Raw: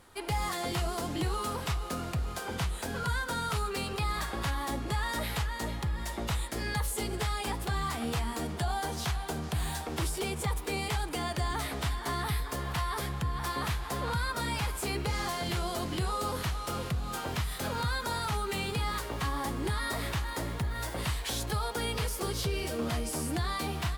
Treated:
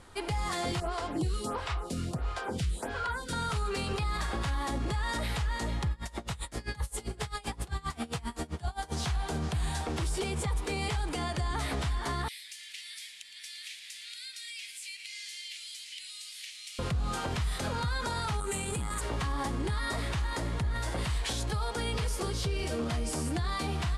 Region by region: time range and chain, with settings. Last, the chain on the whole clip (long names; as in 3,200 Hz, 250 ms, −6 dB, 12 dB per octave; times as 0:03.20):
0:00.80–0:03.33: notch filter 6,400 Hz, Q 24 + phaser with staggered stages 1.5 Hz
0:05.91–0:08.92: high-shelf EQ 9,400 Hz +6 dB + mains-hum notches 50/100/150/200/250/300/350/400/450/500 Hz + tremolo with a sine in dB 7.6 Hz, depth 25 dB
0:12.28–0:16.79: Butterworth high-pass 2,100 Hz 48 dB per octave + downward compressor 3 to 1, threshold −43 dBFS + feedback echo at a low word length 114 ms, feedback 55%, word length 10 bits, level −11.5 dB
0:18.40–0:19.01: high shelf with overshoot 6,300 Hz +8.5 dB, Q 3 + saturating transformer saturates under 400 Hz
whole clip: low-pass filter 10,000 Hz 24 dB per octave; low-shelf EQ 120 Hz +5.5 dB; brickwall limiter −27 dBFS; level +3 dB